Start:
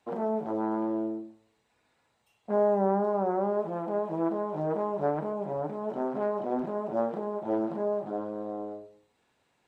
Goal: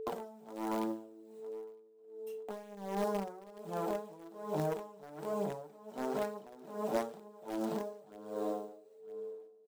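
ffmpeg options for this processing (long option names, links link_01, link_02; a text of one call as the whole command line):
ffmpeg -i in.wav -filter_complex "[0:a]highpass=frequency=120:width=0.5412,highpass=frequency=120:width=1.3066,aemphasis=mode=production:type=riaa,agate=range=-33dB:threshold=-54dB:ratio=3:detection=peak,highshelf=frequency=2100:gain=-5,acrossover=split=190|3000[link_01][link_02][link_03];[link_02]acompressor=threshold=-45dB:ratio=5[link_04];[link_01][link_04][link_03]amix=inputs=3:normalize=0,asplit=2[link_05][link_06];[link_06]acrusher=bits=5:mix=0:aa=0.000001,volume=-11dB[link_07];[link_05][link_07]amix=inputs=2:normalize=0,aphaser=in_gain=1:out_gain=1:delay=4.8:decay=0.37:speed=1.1:type=triangular,acrusher=bits=8:mode=log:mix=0:aa=0.000001,aeval=exprs='val(0)+0.00316*sin(2*PI*440*n/s)':channel_layout=same,asplit=2[link_08][link_09];[link_09]aecho=0:1:959|1918|2877:0.0708|0.029|0.0119[link_10];[link_08][link_10]amix=inputs=2:normalize=0,aeval=exprs='val(0)*pow(10,-21*(0.5-0.5*cos(2*PI*1.3*n/s))/20)':channel_layout=same,volume=10.5dB" out.wav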